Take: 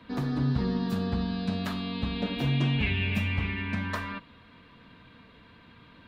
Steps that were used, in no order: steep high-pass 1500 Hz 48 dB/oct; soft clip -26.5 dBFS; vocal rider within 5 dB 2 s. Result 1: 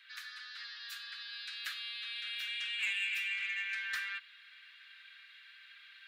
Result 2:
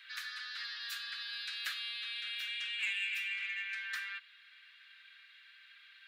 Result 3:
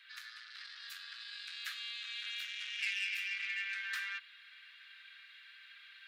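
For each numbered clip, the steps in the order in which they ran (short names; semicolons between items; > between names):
vocal rider > steep high-pass > soft clip; steep high-pass > vocal rider > soft clip; vocal rider > soft clip > steep high-pass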